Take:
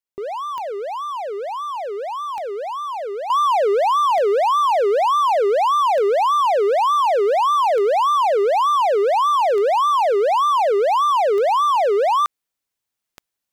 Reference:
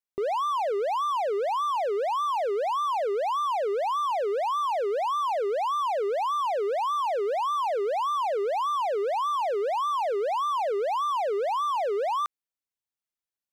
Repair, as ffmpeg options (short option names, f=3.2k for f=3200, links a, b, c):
-af "adeclick=t=4,asetnsamples=n=441:p=0,asendcmd='3.3 volume volume -10dB',volume=0dB"